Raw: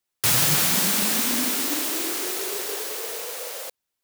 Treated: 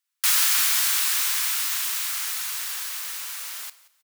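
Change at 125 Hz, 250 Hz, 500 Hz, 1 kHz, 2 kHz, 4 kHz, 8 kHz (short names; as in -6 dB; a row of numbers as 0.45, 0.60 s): under -40 dB, under -40 dB, under -20 dB, -3.5 dB, 0.0 dB, 0.0 dB, 0.0 dB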